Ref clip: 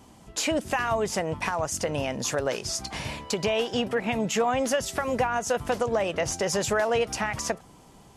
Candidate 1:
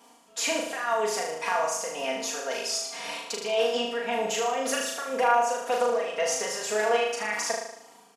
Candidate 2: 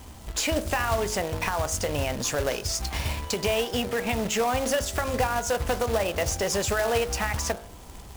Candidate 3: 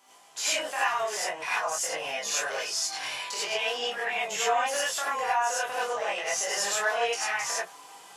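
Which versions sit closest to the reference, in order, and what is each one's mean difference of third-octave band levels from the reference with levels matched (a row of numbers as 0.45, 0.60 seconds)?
2, 1, 3; 6.0, 8.0, 10.5 decibels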